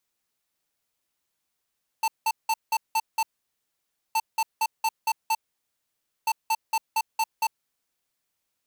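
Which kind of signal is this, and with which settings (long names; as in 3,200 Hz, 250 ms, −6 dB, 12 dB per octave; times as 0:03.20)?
beeps in groups square 890 Hz, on 0.05 s, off 0.18 s, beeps 6, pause 0.92 s, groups 3, −23 dBFS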